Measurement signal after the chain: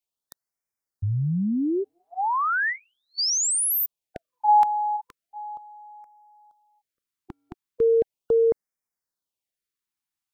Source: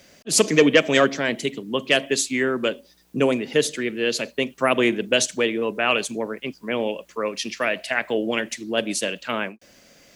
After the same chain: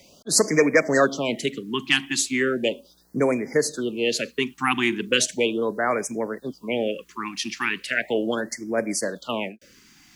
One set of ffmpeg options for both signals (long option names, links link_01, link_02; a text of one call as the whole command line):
ffmpeg -i in.wav -filter_complex "[0:a]acrossover=split=490|3000[link_01][link_02][link_03];[link_01]acompressor=threshold=-20dB:ratio=6[link_04];[link_04][link_02][link_03]amix=inputs=3:normalize=0,afftfilt=real='re*(1-between(b*sr/1024,500*pow(3500/500,0.5+0.5*sin(2*PI*0.37*pts/sr))/1.41,500*pow(3500/500,0.5+0.5*sin(2*PI*0.37*pts/sr))*1.41))':imag='im*(1-between(b*sr/1024,500*pow(3500/500,0.5+0.5*sin(2*PI*0.37*pts/sr))/1.41,500*pow(3500/500,0.5+0.5*sin(2*PI*0.37*pts/sr))*1.41))':win_size=1024:overlap=0.75" out.wav